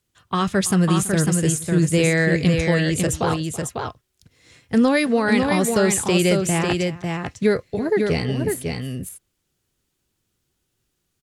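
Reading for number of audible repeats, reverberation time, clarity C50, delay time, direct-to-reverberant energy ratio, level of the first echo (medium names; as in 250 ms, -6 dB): 2, no reverb, no reverb, 330 ms, no reverb, -18.0 dB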